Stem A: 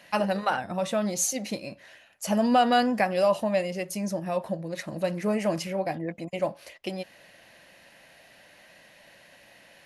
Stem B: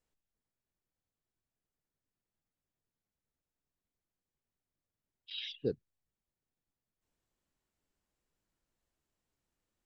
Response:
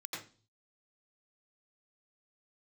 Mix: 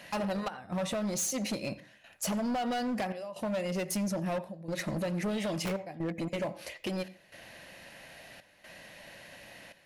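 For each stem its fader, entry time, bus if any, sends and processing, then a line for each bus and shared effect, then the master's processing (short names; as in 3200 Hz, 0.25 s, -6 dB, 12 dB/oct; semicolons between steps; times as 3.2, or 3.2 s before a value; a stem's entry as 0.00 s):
+3.0 dB, 0.00 s, send -17.5 dB, low shelf 180 Hz +5.5 dB; compressor 6:1, threshold -30 dBFS, peak gain reduction 13.5 dB; step gate "xxxx..xxxxx" 125 bpm -12 dB
-4.5 dB, 0.00 s, send -21 dB, wrapped overs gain 26.5 dB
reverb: on, RT60 0.35 s, pre-delay 82 ms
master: hard clip -28.5 dBFS, distortion -11 dB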